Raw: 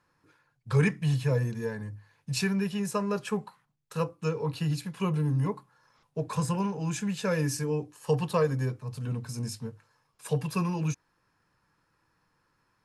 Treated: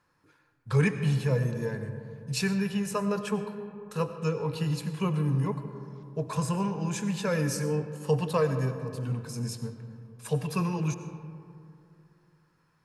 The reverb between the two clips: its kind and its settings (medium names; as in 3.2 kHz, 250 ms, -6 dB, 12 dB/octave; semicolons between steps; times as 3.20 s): algorithmic reverb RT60 2.6 s, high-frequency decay 0.35×, pre-delay 55 ms, DRR 9 dB